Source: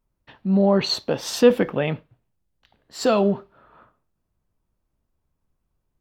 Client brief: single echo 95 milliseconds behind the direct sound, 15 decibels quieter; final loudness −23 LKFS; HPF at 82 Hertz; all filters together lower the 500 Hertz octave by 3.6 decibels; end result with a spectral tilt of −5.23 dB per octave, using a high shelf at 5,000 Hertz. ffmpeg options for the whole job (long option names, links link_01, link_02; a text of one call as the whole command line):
ffmpeg -i in.wav -af "highpass=82,equalizer=frequency=500:width_type=o:gain=-4,highshelf=frequency=5000:gain=-7,aecho=1:1:95:0.178" out.wav